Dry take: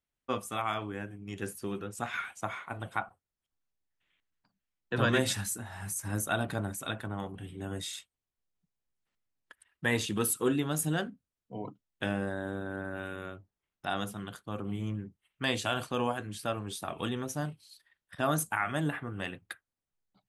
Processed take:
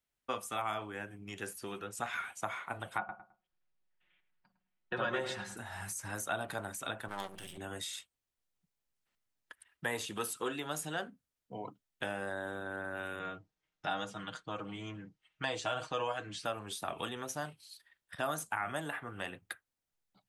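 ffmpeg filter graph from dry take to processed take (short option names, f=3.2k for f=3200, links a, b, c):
-filter_complex "[0:a]asettb=1/sr,asplit=3[a][b][c];[a]atrim=end=2.984[d];[b]atrim=start=2.98:end=5.57,asetpts=PTS-STARTPTS,afade=t=in:d=0.004:c=qsin,afade=t=out:st=2.586:d=0.004:c=qsin,lowpass=3.1k,aecho=1:1:5.5:0.65,atrim=end_sample=114219,asplit=2[e][f];[f]adelay=106,lowpass=f=1.3k:p=1,volume=-9dB,asplit=2[g][h];[h]adelay=106,lowpass=f=1.3k:p=1,volume=0.27,asplit=2[i][j];[j]adelay=106,lowpass=f=1.3k:p=1,volume=0.27[k];[e][g][i][k]amix=inputs=4:normalize=0,atrim=end_sample=114219[l];[c]atrim=start=5.566[m];[d][l]acrossfade=d=0.004:c1=hsin:c2=qsin[n];[n][m]acrossfade=d=0.004:c1=qsin:c2=hsin,asettb=1/sr,asplit=3[o][p][q];[o]atrim=end=7.084[r];[p]atrim=start=7.08:end=7.58,asetpts=PTS-STARTPTS,afade=t=in:d=0.004:c=qsin,afade=t=out:st=0.496:d=0.004:c=qsin,highshelf=f=2.2k:g=11.5,aecho=1:1:5.2:0.39,atrim=end_sample=22050,aeval=exprs='max(val(0),0)':c=same[s];[q]atrim=start=7.576[t];[r][s]acrossfade=d=0.004:c1=hsin:c2=qsin[u];[u][t]acrossfade=d=0.004:c1=qsin:c2=hsin,asettb=1/sr,asplit=3[v][w][x];[v]atrim=end=13.194[y];[w]atrim=start=13.19:end=16.45,asetpts=PTS-STARTPTS,afade=t=in:d=0.004:c=qsin,afade=t=out:st=3.256:d=0.004:c=qsin,lowpass=f=6.8k:w=0.5412,lowpass=f=6.8k:w=1.3066,aecho=1:1:6.4:0.69,atrim=end_sample=143766[z];[x]atrim=start=16.446[aa];[y][z]acrossfade=d=0.004:c1=hsin:c2=qsin[ab];[ab][aa]acrossfade=d=0.004:c1=qsin:c2=hsin,lowshelf=f=430:g=-4,bandreject=f=1.1k:w=28,acrossover=split=510|1200|7100[ac][ad][ae][af];[ac]acompressor=threshold=-48dB:ratio=4[ag];[ad]acompressor=threshold=-37dB:ratio=4[ah];[ae]acompressor=threshold=-43dB:ratio=4[ai];[af]acompressor=threshold=-49dB:ratio=4[aj];[ag][ah][ai][aj]amix=inputs=4:normalize=0,volume=2dB"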